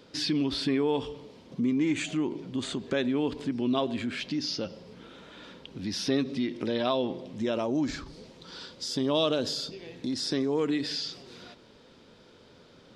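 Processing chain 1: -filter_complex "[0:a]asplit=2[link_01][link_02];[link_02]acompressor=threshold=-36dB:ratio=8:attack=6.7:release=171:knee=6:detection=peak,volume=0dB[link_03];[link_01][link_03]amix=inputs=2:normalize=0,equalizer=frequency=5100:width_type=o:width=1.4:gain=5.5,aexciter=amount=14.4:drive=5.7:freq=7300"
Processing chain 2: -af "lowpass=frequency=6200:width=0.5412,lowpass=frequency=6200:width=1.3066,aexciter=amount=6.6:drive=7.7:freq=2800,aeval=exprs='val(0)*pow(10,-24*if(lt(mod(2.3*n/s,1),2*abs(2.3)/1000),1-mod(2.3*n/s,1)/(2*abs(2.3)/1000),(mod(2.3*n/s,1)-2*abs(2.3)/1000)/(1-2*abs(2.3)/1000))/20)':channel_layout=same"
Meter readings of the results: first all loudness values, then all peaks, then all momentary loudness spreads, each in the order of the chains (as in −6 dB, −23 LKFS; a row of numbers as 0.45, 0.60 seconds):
−24.0, −26.5 LKFS; −6.0, −5.5 dBFS; 17, 18 LU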